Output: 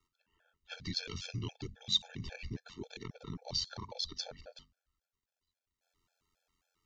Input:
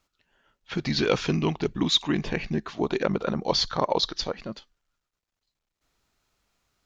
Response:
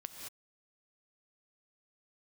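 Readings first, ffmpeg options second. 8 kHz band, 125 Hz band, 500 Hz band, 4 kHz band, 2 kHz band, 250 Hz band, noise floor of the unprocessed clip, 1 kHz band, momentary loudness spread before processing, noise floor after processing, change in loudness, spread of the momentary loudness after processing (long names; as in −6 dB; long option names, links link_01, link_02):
can't be measured, −12.0 dB, −23.0 dB, −9.0 dB, −15.5 dB, −19.5 dB, −84 dBFS, −21.5 dB, 10 LU, below −85 dBFS, −12.0 dB, 16 LU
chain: -filter_complex "[0:a]aeval=exprs='val(0)*sin(2*PI*44*n/s)':channel_layout=same,acrossover=split=140|3000[link_01][link_02][link_03];[link_02]acompressor=threshold=-41dB:ratio=6[link_04];[link_01][link_04][link_03]amix=inputs=3:normalize=0,bandreject=frequency=50:width_type=h:width=6,bandreject=frequency=100:width_type=h:width=6,bandreject=frequency=150:width_type=h:width=6,bandreject=frequency=200:width_type=h:width=6,bandreject=frequency=250:width_type=h:width=6,afftfilt=real='re*gt(sin(2*PI*3.7*pts/sr)*(1-2*mod(floor(b*sr/1024/450),2)),0)':imag='im*gt(sin(2*PI*3.7*pts/sr)*(1-2*mod(floor(b*sr/1024/450),2)),0)':win_size=1024:overlap=0.75,volume=-1.5dB"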